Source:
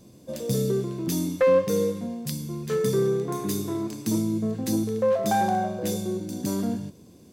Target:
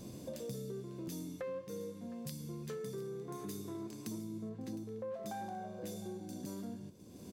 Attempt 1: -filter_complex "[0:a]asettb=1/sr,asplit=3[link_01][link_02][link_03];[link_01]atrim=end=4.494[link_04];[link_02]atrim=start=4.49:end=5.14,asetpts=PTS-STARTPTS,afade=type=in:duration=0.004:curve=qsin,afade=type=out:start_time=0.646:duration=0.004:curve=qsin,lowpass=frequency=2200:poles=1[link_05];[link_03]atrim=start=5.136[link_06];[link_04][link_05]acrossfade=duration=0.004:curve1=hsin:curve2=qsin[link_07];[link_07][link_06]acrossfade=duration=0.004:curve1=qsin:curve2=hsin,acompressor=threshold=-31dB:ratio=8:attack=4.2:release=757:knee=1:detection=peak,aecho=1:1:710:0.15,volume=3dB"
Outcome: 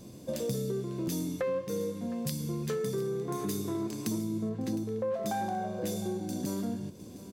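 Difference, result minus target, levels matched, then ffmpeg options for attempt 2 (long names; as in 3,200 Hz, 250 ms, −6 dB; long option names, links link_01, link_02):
downward compressor: peak gain reduction −10 dB
-filter_complex "[0:a]asettb=1/sr,asplit=3[link_01][link_02][link_03];[link_01]atrim=end=4.494[link_04];[link_02]atrim=start=4.49:end=5.14,asetpts=PTS-STARTPTS,afade=type=in:duration=0.004:curve=qsin,afade=type=out:start_time=0.646:duration=0.004:curve=qsin,lowpass=frequency=2200:poles=1[link_05];[link_03]atrim=start=5.136[link_06];[link_04][link_05]acrossfade=duration=0.004:curve1=hsin:curve2=qsin[link_07];[link_07][link_06]acrossfade=duration=0.004:curve1=qsin:curve2=hsin,acompressor=threshold=-42.5dB:ratio=8:attack=4.2:release=757:knee=1:detection=peak,aecho=1:1:710:0.15,volume=3dB"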